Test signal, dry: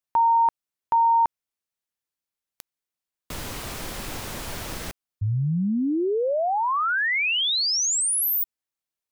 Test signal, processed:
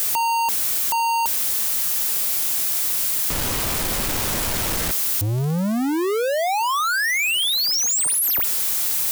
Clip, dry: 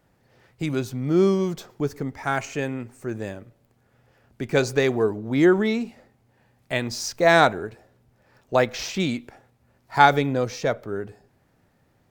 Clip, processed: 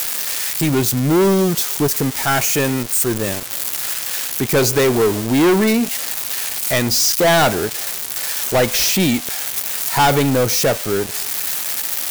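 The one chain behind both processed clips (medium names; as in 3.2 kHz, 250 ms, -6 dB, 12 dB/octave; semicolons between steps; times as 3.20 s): zero-crossing glitches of -15.5 dBFS; waveshaping leveller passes 5; trim -7.5 dB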